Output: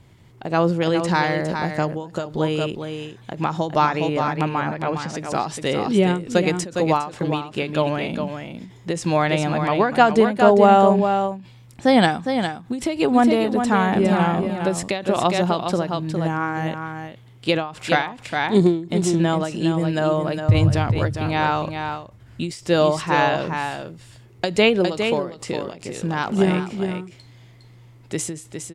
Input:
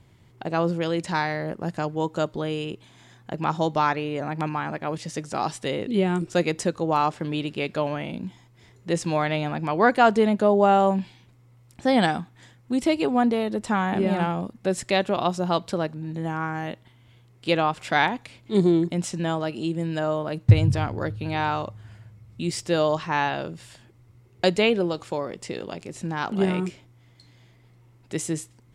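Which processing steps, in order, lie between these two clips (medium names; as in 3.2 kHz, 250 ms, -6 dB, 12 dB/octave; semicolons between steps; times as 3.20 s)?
4.45–5.15 s: low-pass 6.2 kHz 12 dB/octave; delay 409 ms -7 dB; endings held to a fixed fall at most 120 dB/s; trim +5 dB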